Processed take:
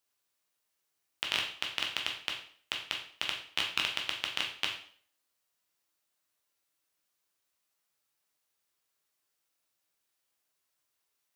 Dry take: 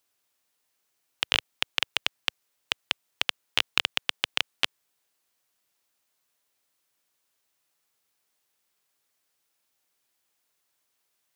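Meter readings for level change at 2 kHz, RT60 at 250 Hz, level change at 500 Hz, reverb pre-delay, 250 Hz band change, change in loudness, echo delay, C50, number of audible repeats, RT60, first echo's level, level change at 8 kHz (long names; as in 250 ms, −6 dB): −5.0 dB, 0.55 s, −5.0 dB, 5 ms, −4.5 dB, −5.0 dB, no echo audible, 6.5 dB, no echo audible, 0.50 s, no echo audible, −5.0 dB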